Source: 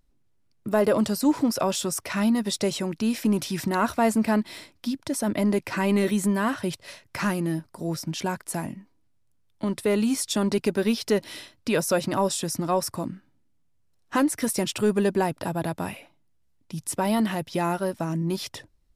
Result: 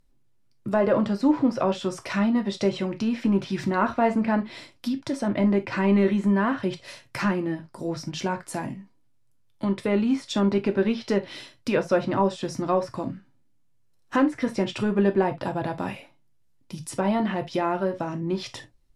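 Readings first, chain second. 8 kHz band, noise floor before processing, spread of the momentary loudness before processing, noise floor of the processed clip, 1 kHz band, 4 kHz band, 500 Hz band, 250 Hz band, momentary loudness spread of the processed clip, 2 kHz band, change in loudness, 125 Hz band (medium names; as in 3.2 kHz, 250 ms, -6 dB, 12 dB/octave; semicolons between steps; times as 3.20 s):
-11.5 dB, -65 dBFS, 12 LU, -61 dBFS, +0.5 dB, -4.0 dB, +1.0 dB, +1.0 dB, 12 LU, 0.0 dB, +0.5 dB, +0.5 dB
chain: low-pass that closes with the level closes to 2.5 kHz, closed at -22 dBFS; gated-style reverb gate 90 ms falling, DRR 6 dB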